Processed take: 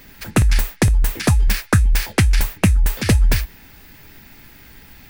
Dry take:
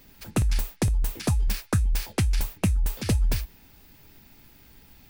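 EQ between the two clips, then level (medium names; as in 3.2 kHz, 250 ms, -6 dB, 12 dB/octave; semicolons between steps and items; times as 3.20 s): peaking EQ 1.8 kHz +7 dB 0.87 oct; +8.5 dB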